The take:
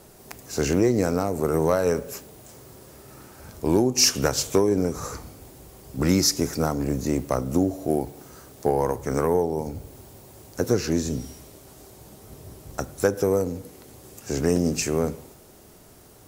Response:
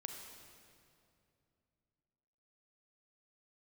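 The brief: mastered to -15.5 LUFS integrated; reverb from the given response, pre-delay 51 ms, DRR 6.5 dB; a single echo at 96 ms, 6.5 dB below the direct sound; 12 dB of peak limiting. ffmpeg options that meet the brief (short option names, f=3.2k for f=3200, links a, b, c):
-filter_complex "[0:a]alimiter=limit=-19.5dB:level=0:latency=1,aecho=1:1:96:0.473,asplit=2[a][b];[1:a]atrim=start_sample=2205,adelay=51[c];[b][c]afir=irnorm=-1:irlink=0,volume=-4dB[d];[a][d]amix=inputs=2:normalize=0,volume=13.5dB"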